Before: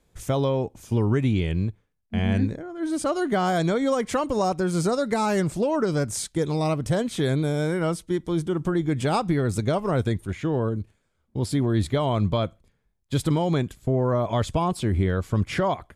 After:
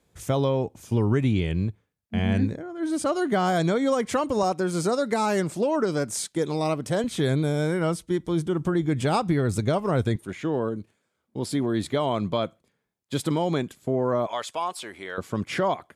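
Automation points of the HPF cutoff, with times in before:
72 Hz
from 4.43 s 190 Hz
from 7.04 s 46 Hz
from 10.16 s 190 Hz
from 14.27 s 750 Hz
from 15.18 s 190 Hz

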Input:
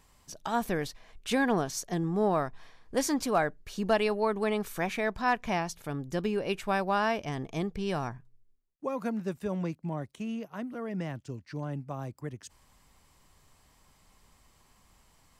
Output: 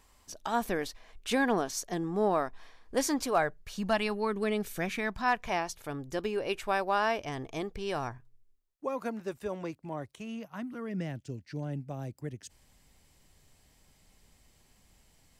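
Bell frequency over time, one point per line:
bell -11 dB 0.66 oct
3.07 s 140 Hz
4.71 s 1200 Hz
5.6 s 180 Hz
10.02 s 180 Hz
11.1 s 1100 Hz

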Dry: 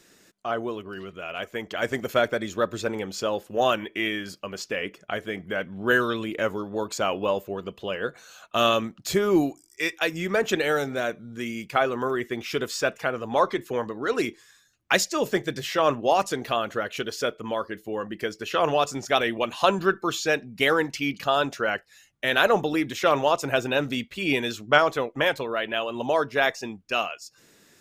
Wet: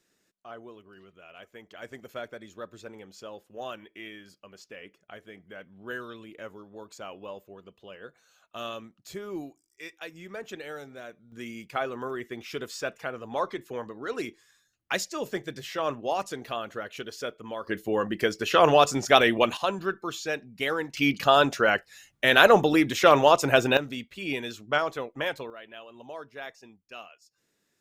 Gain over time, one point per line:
-15.5 dB
from 11.32 s -7.5 dB
from 17.67 s +4 dB
from 19.57 s -7 dB
from 20.97 s +3.5 dB
from 23.77 s -7 dB
from 25.5 s -17.5 dB

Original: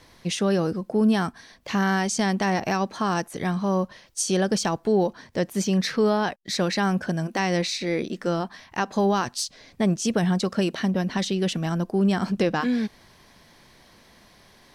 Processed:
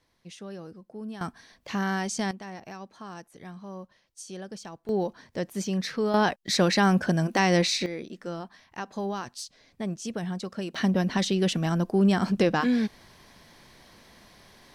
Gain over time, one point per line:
-18 dB
from 1.21 s -5.5 dB
from 2.31 s -17 dB
from 4.89 s -6 dB
from 6.14 s +2 dB
from 7.86 s -10 dB
from 10.75 s 0 dB

